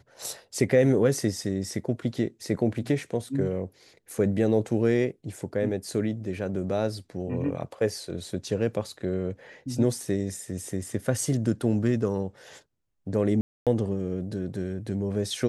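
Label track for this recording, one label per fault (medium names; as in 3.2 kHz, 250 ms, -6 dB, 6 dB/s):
13.410000	13.670000	dropout 257 ms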